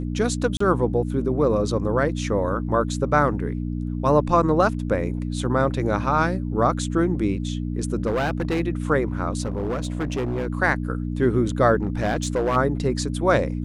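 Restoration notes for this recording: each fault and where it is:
mains hum 60 Hz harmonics 5 −27 dBFS
0:00.57–0:00.60: drop-out 34 ms
0:08.06–0:08.61: clipping −19 dBFS
0:09.41–0:10.47: clipping −21.5 dBFS
0:11.83–0:12.57: clipping −17.5 dBFS

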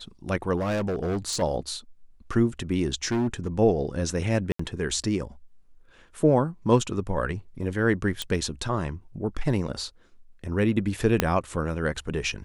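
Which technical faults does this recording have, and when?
0:00.56–0:01.43: clipping −23.5 dBFS
0:03.11–0:03.47: clipping −21.5 dBFS
0:04.52–0:04.59: drop-out 74 ms
0:08.22: click −13 dBFS
0:11.20: click −5 dBFS

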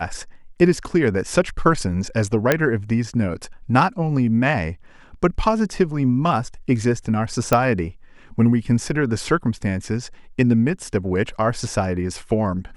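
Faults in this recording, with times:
0:02.52: click −2 dBFS
0:07.53: click −3 dBFS

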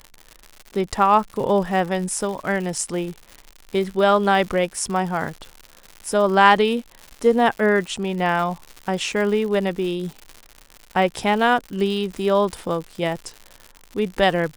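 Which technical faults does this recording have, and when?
surface crackle 150 per second −29 dBFS

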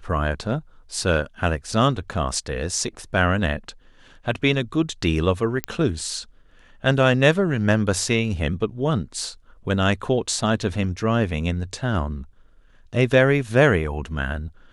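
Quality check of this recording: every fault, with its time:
0:05.64: click −8 dBFS

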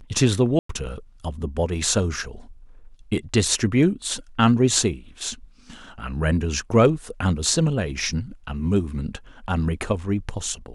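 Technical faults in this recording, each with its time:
0:00.59–0:00.69: drop-out 104 ms

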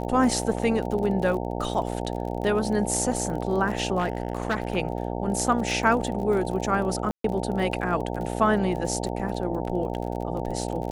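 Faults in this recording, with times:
mains buzz 60 Hz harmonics 15 −30 dBFS
surface crackle 35 per second −32 dBFS
0:00.53: drop-out 2.1 ms
0:03.98–0:04.77: clipping −20 dBFS
0:07.11–0:07.24: drop-out 133 ms

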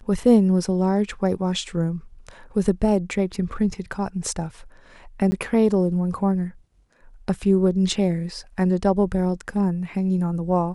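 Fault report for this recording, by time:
0:05.31–0:05.32: drop-out 10 ms

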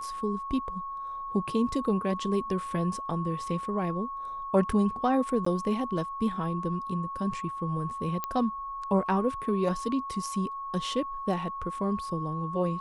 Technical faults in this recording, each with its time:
whistle 1,100 Hz −34 dBFS
0:05.45–0:05.46: drop-out 14 ms
0:08.24: click −16 dBFS

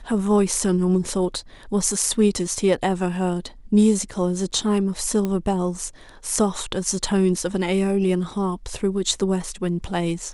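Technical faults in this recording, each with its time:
0:05.25: click −13 dBFS

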